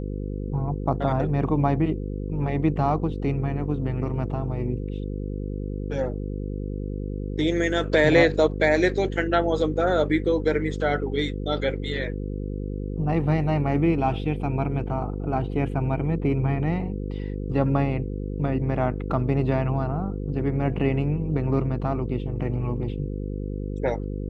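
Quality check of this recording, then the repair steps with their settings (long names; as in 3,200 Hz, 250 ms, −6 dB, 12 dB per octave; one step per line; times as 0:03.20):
mains buzz 50 Hz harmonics 10 −30 dBFS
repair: hum removal 50 Hz, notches 10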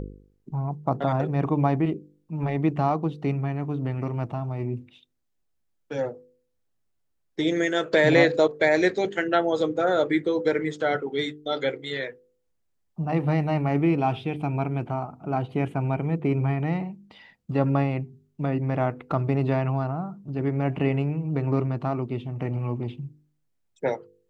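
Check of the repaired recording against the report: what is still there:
none of them is left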